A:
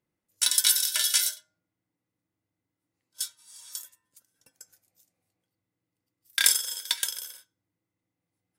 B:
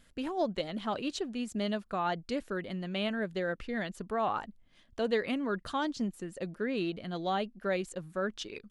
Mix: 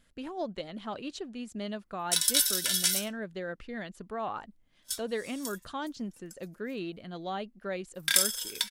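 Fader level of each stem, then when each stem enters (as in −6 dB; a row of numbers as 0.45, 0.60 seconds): −3.0, −4.0 decibels; 1.70, 0.00 seconds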